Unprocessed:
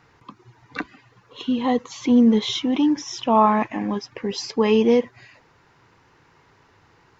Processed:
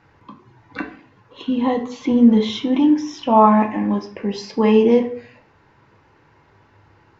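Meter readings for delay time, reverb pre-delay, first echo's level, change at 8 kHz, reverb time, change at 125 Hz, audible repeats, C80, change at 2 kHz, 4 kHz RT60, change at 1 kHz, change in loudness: none, 3 ms, none, n/a, 0.50 s, n/a, none, 15.5 dB, +0.5 dB, 0.35 s, +3.5 dB, +3.5 dB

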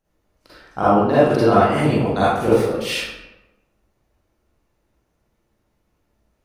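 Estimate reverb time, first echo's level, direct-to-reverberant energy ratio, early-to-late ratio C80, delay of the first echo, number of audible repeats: 1.0 s, none, -10.5 dB, 0.5 dB, none, none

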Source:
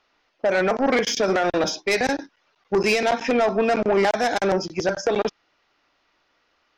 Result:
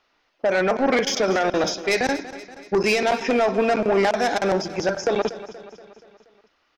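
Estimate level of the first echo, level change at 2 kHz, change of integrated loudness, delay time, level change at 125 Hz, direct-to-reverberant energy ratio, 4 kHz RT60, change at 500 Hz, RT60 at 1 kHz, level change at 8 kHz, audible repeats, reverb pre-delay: -15.0 dB, 0.0 dB, 0.0 dB, 0.238 s, 0.0 dB, none, none, 0.0 dB, none, 0.0 dB, 4, none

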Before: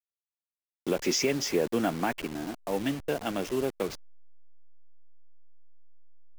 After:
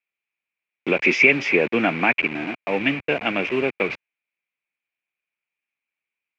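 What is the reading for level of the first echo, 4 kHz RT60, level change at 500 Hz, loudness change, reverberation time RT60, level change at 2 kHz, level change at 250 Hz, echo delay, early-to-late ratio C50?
none, none, +6.5 dB, +10.0 dB, none, +18.5 dB, +6.0 dB, none, none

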